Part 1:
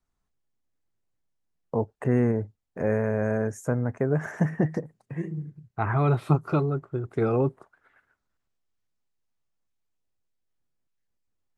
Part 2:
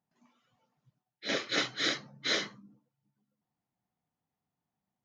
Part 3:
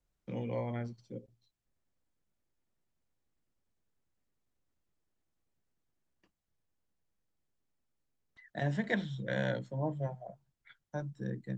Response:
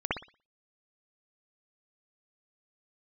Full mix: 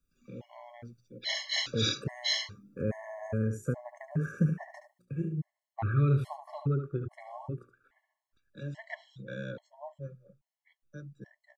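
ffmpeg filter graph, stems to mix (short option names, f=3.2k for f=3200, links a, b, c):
-filter_complex "[0:a]lowshelf=f=170:g=7,bandreject=f=60:t=h:w=6,bandreject=f=120:t=h:w=6,bandreject=f=180:t=h:w=6,bandreject=f=240:t=h:w=6,bandreject=f=300:t=h:w=6,bandreject=f=360:t=h:w=6,bandreject=f=420:t=h:w=6,volume=-4.5dB,asplit=2[a][b];[b]volume=-9.5dB[c];[1:a]acrossover=split=6200[d][e];[e]acompressor=threshold=-51dB:ratio=4:attack=1:release=60[f];[d][f]amix=inputs=2:normalize=0,highshelf=f=2.1k:g=9,volume=-0.5dB[g];[2:a]volume=-5dB[h];[c]aecho=0:1:72:1[i];[a][g][h][i]amix=inputs=4:normalize=0,acrossover=split=310|3000[j][k][l];[k]acompressor=threshold=-32dB:ratio=6[m];[j][m][l]amix=inputs=3:normalize=0,afftfilt=real='re*gt(sin(2*PI*1.2*pts/sr)*(1-2*mod(floor(b*sr/1024/560),2)),0)':imag='im*gt(sin(2*PI*1.2*pts/sr)*(1-2*mod(floor(b*sr/1024/560),2)),0)':win_size=1024:overlap=0.75"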